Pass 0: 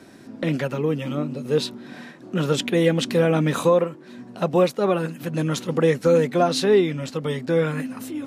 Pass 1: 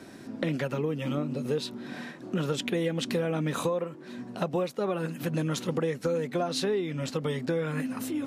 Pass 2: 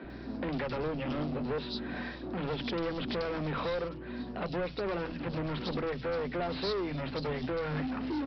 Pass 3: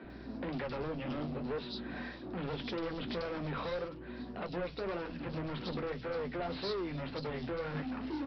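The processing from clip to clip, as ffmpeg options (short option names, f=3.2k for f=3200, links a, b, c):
-af "acompressor=threshold=-26dB:ratio=6"
-filter_complex "[0:a]aresample=11025,volume=33dB,asoftclip=hard,volume=-33dB,aresample=44100,aeval=exprs='val(0)+0.00316*(sin(2*PI*60*n/s)+sin(2*PI*2*60*n/s)/2+sin(2*PI*3*60*n/s)/3+sin(2*PI*4*60*n/s)/4+sin(2*PI*5*60*n/s)/5)':c=same,acrossover=split=160|3300[a][b][c];[a]adelay=40[d];[c]adelay=100[e];[d][b][e]amix=inputs=3:normalize=0,volume=2.5dB"
-af "flanger=delay=8.3:depth=6.4:regen=-57:speed=1.8:shape=triangular"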